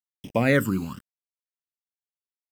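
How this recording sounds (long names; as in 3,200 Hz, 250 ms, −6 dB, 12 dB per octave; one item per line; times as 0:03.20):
a quantiser's noise floor 8 bits, dither none
phaser sweep stages 12, 0.94 Hz, lowest notch 590–1,400 Hz
Ogg Vorbis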